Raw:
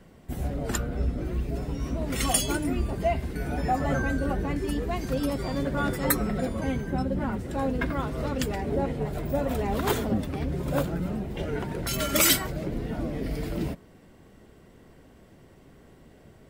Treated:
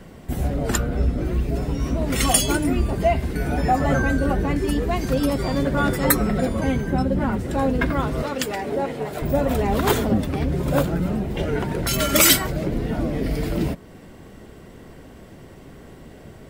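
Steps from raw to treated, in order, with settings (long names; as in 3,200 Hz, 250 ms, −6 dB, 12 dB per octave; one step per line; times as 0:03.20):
0:08.22–0:09.22: high-pass filter 490 Hz 6 dB per octave
in parallel at −3 dB: downward compressor, threshold −40 dBFS, peak gain reduction 21.5 dB
on the sum: level +5.5 dB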